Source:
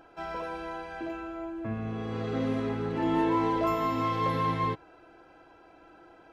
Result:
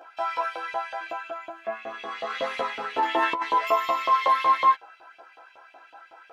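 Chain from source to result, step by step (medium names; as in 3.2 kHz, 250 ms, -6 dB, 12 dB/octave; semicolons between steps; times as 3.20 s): LFO high-pass saw up 5.4 Hz 590–3200 Hz; chorus voices 2, 0.77 Hz, delay 14 ms, depth 1.1 ms; 2.30–3.42 s: compressor with a negative ratio -31 dBFS, ratio -1; trim +8 dB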